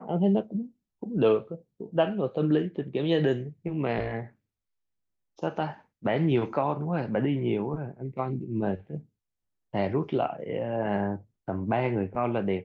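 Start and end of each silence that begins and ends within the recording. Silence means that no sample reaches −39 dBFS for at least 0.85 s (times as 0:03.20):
0:04.27–0:05.39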